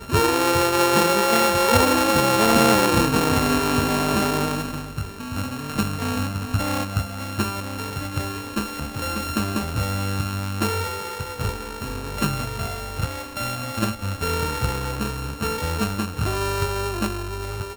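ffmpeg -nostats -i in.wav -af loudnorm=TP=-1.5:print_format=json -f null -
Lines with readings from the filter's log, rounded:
"input_i" : "-23.0",
"input_tp" : "-3.6",
"input_lra" : "9.1",
"input_thresh" : "-33.0",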